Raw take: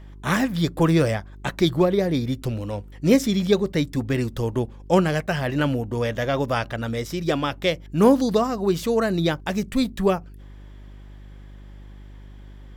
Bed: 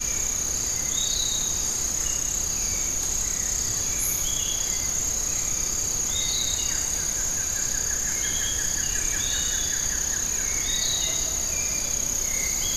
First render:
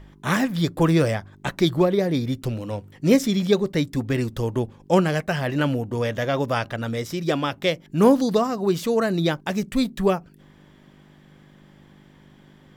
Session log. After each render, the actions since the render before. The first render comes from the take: de-hum 50 Hz, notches 2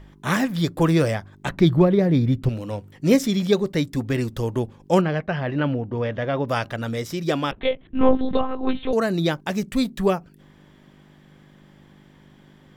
1.49–2.49 tone controls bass +8 dB, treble -10 dB; 5.01–6.49 air absorption 270 m; 7.51–8.93 monotone LPC vocoder at 8 kHz 260 Hz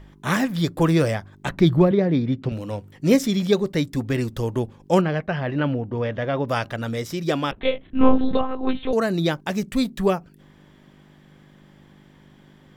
1.91–2.52 BPF 160–4800 Hz; 7.63–8.35 doubler 30 ms -4 dB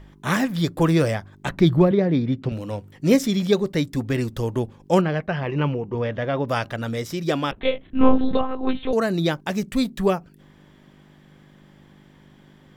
5.43–5.95 ripple EQ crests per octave 0.77, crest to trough 10 dB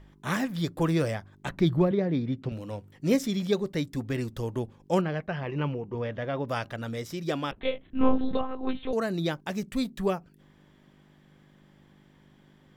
gain -7 dB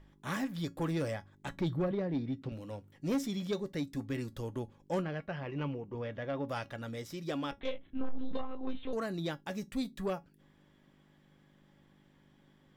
resonator 280 Hz, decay 0.15 s, harmonics all, mix 60%; soft clip -25.5 dBFS, distortion -10 dB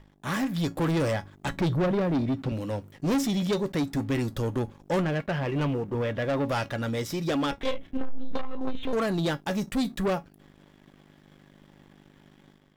AGC gain up to 5 dB; sample leveller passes 2

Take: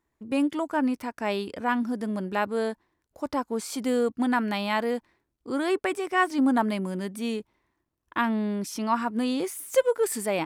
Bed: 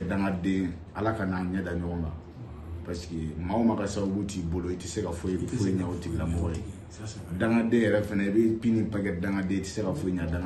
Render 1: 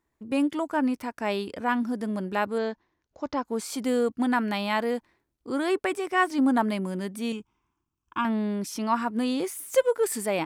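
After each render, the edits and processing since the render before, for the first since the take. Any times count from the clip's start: 2.58–3.45 elliptic low-pass 6600 Hz; 7.32–8.25 fixed phaser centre 2800 Hz, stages 8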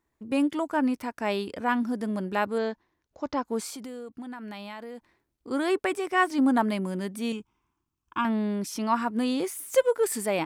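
3.69–5.51 compressor 8:1, threshold -36 dBFS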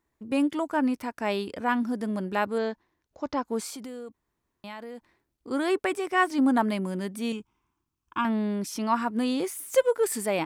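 4.14–4.64 room tone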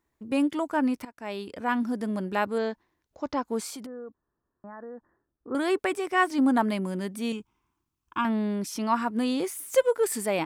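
1.05–1.82 fade in, from -15.5 dB; 3.86–5.55 rippled Chebyshev low-pass 1800 Hz, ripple 3 dB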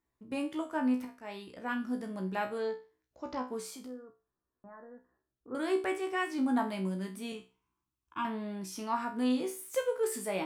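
resonator 63 Hz, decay 0.32 s, harmonics all, mix 90%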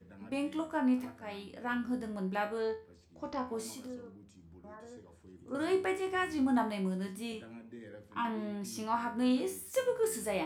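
add bed -25.5 dB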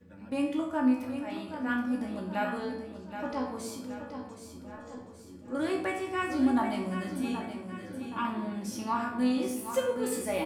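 feedback echo 0.774 s, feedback 47%, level -9 dB; shoebox room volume 2600 m³, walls furnished, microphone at 2.4 m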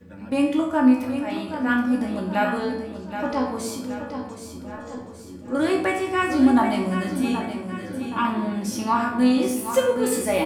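gain +9 dB

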